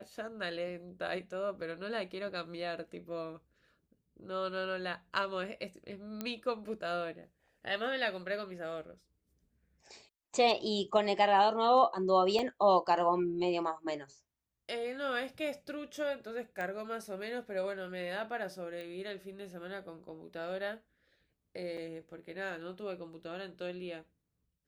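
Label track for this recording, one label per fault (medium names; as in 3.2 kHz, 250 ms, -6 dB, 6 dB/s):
6.210000	6.210000	pop -22 dBFS
12.390000	12.390000	dropout 2.2 ms
16.610000	16.610000	pop -26 dBFS
18.810000	18.810000	pop -32 dBFS
21.770000	21.770000	dropout 4.9 ms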